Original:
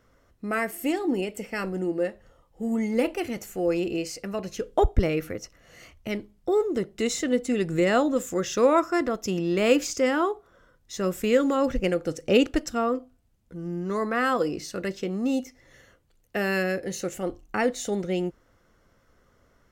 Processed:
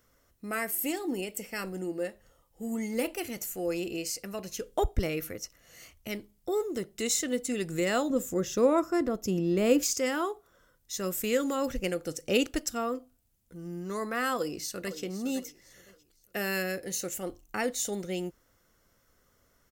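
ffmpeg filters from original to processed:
-filter_complex "[0:a]asettb=1/sr,asplit=3[s0][s1][s2];[s0]atrim=end=8.104[s3];[s1]atrim=start=8.1:end=9.83,asetpts=PTS-STARTPTS,afade=t=in:d=0.004:c=qsin,afade=t=out:st=1.726:d=0.004:c=qsin,tiltshelf=f=830:g=7[s4];[s2]atrim=start=9.826[s5];[s3][s4]acrossfade=d=0.004:c1=hsin:c2=qsin[s6];[s6][s5]acrossfade=d=0.004:c1=qsin:c2=hsin,asplit=2[s7][s8];[s8]afade=t=in:st=14.35:d=0.01,afade=t=out:st=15.01:d=0.01,aecho=0:1:510|1020|1530:0.223872|0.0671616|0.0201485[s9];[s7][s9]amix=inputs=2:normalize=0,aemphasis=mode=production:type=75kf,volume=0.447"

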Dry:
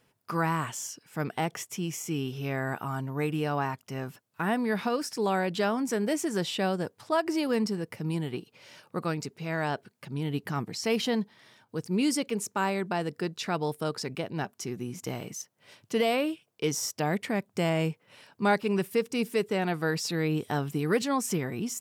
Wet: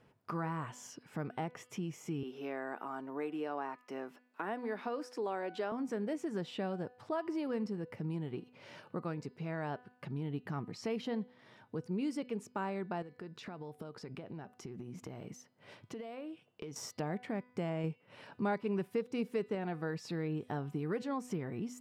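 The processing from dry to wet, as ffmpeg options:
-filter_complex "[0:a]asettb=1/sr,asplit=3[s0][s1][s2];[s0]atrim=end=2.234[s3];[s1]atrim=start=2.23:end=5.72,asetpts=PTS-STARTPTS,afade=t=in:d=0.004:c=qsin,afade=t=out:st=3.486:d=0.004:c=qsin,highpass=f=270:w=0.5412,highpass=f=270:w=1.3066[s4];[s2]atrim=start=5.716[s5];[s3][s4]acrossfade=d=0.004:c1=hsin:c2=qsin[s6];[s6][s5]acrossfade=d=0.004:c1=qsin:c2=hsin,asettb=1/sr,asplit=3[s7][s8][s9];[s7]atrim=end=13.024[s10];[s8]atrim=start=13.02:end=16.76,asetpts=PTS-STARTPTS,afade=t=in:d=0.004:c=qsin,afade=t=out:st=3.736:d=0.004:c=qsin,acompressor=threshold=0.00891:ratio=6:attack=3.2:release=140:knee=1:detection=peak[s11];[s9]atrim=start=16.756[s12];[s10][s11]acrossfade=d=0.004:c1=hsin:c2=qsin[s13];[s13][s12]acrossfade=d=0.004:c1=qsin:c2=hsin,asplit=3[s14][s15][s16];[s14]atrim=end=17.842[s17];[s15]atrim=start=17.838:end=19.552,asetpts=PTS-STARTPTS,volume=1.5[s18];[s16]atrim=start=19.548[s19];[s17][s18]acrossfade=d=0.004:c1=hsin:c2=hsin[s20];[s20][s19]acrossfade=d=0.004:c1=hsin:c2=hsin,lowpass=f=1300:p=1,bandreject=f=248.8:t=h:w=4,bandreject=f=497.6:t=h:w=4,bandreject=f=746.4:t=h:w=4,bandreject=f=995.2:t=h:w=4,bandreject=f=1244:t=h:w=4,bandreject=f=1492.8:t=h:w=4,bandreject=f=1741.6:t=h:w=4,bandreject=f=1990.4:t=h:w=4,bandreject=f=2239.2:t=h:w=4,bandreject=f=2488:t=h:w=4,bandreject=f=2736.8:t=h:w=4,bandreject=f=2985.6:t=h:w=4,bandreject=f=3234.4:t=h:w=4,bandreject=f=3483.2:t=h:w=4,bandreject=f=3732:t=h:w=4,bandreject=f=3980.8:t=h:w=4,bandreject=f=4229.6:t=h:w=4,bandreject=f=4478.4:t=h:w=4,bandreject=f=4727.2:t=h:w=4,bandreject=f=4976:t=h:w=4,acompressor=threshold=0.00398:ratio=2,volume=1.58"

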